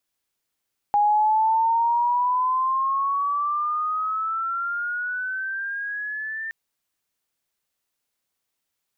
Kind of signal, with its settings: chirp logarithmic 820 Hz -> 1800 Hz -15.5 dBFS -> -28 dBFS 5.57 s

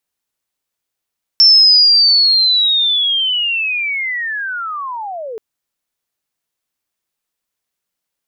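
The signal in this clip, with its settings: chirp linear 5400 Hz -> 420 Hz -4 dBFS -> -23.5 dBFS 3.98 s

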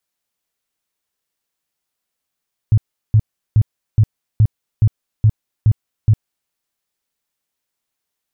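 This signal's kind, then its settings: tone bursts 108 Hz, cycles 6, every 0.42 s, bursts 9, -7 dBFS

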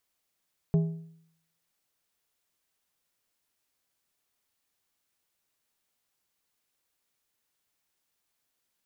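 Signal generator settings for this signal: metal hit plate, lowest mode 163 Hz, decay 0.69 s, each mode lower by 10.5 dB, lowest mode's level -18 dB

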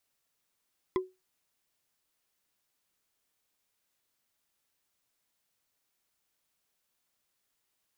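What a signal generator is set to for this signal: wood hit, lowest mode 372 Hz, decay 0.23 s, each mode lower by 5.5 dB, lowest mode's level -22 dB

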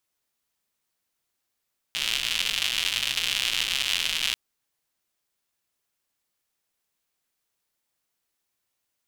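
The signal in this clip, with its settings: rain from filtered ticks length 2.39 s, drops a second 170, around 3000 Hz, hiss -19 dB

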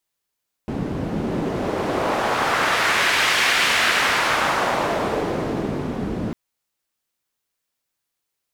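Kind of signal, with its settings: wind-like swept noise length 5.65 s, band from 210 Hz, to 2200 Hz, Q 1.1, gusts 1, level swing 7 dB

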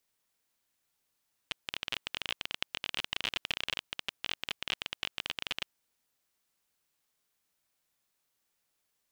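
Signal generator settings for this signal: random clicks 26/s -15.5 dBFS 4.28 s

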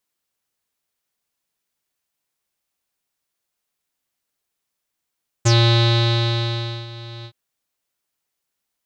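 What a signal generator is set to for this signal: synth note square A#2 12 dB/oct, low-pass 3900 Hz, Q 9.6, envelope 1 oct, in 0.09 s, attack 15 ms, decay 1.40 s, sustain -21.5 dB, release 0.07 s, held 1.80 s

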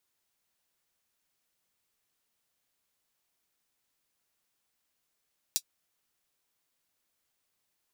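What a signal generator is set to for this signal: closed hi-hat, high-pass 4600 Hz, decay 0.07 s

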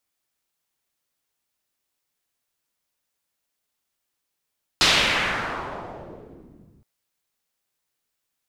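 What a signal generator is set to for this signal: swept filtered noise white, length 2.02 s lowpass, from 4400 Hz, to 160 Hz, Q 1.6, exponential, gain ramp -25 dB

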